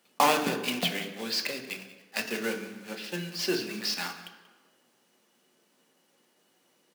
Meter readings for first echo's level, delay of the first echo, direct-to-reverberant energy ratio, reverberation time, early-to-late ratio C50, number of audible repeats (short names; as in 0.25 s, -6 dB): -18.0 dB, 0.185 s, 4.0 dB, 1.3 s, 8.5 dB, 1